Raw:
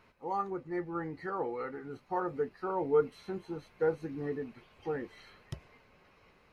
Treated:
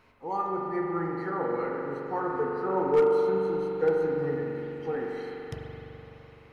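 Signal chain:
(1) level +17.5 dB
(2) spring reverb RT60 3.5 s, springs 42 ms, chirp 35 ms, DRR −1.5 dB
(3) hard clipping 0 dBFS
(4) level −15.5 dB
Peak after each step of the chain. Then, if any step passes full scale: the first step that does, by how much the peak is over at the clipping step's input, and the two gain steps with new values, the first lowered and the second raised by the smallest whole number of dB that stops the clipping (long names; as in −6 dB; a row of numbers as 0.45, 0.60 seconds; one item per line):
+1.5, +5.5, 0.0, −15.5 dBFS
step 1, 5.5 dB
step 1 +11.5 dB, step 4 −9.5 dB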